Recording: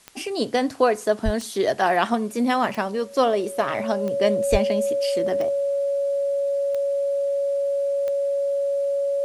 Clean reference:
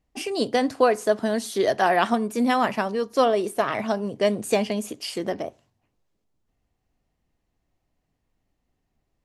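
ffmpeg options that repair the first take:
-filter_complex "[0:a]adeclick=t=4,bandreject=f=560:w=30,asplit=3[a][b][c];[a]afade=t=out:st=1.24:d=0.02[d];[b]highpass=f=140:w=0.5412,highpass=f=140:w=1.3066,afade=t=in:st=1.24:d=0.02,afade=t=out:st=1.36:d=0.02[e];[c]afade=t=in:st=1.36:d=0.02[f];[d][e][f]amix=inputs=3:normalize=0,asplit=3[g][h][i];[g]afade=t=out:st=4.51:d=0.02[j];[h]highpass=f=140:w=0.5412,highpass=f=140:w=1.3066,afade=t=in:st=4.51:d=0.02,afade=t=out:st=4.63:d=0.02[k];[i]afade=t=in:st=4.63:d=0.02[l];[j][k][l]amix=inputs=3:normalize=0,agate=range=-21dB:threshold=-26dB"

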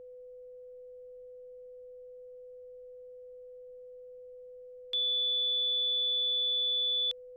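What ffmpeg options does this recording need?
-af "bandreject=f=500:w=30,agate=range=-21dB:threshold=-41dB"

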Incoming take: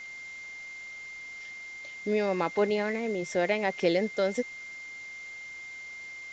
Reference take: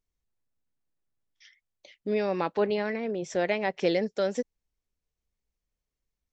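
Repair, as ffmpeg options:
-af "bandreject=f=2.1k:w=30,afwtdn=0.0028"

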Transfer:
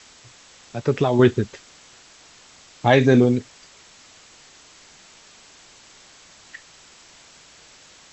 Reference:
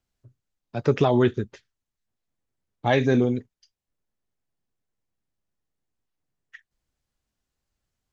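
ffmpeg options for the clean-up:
-af "afwtdn=0.0056,asetnsamples=n=441:p=0,asendcmd='1.19 volume volume -5.5dB',volume=0dB"

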